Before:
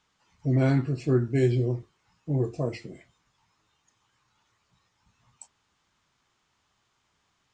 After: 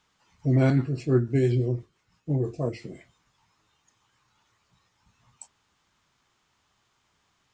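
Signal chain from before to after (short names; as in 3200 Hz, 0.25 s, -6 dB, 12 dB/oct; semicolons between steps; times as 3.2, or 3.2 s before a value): 0.7–2.83 rotary speaker horn 6 Hz; gain +2 dB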